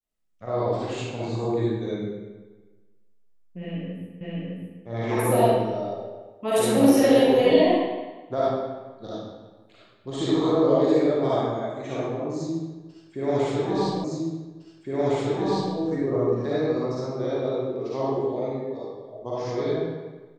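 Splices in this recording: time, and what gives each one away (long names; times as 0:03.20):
0:04.21: the same again, the last 0.61 s
0:14.04: the same again, the last 1.71 s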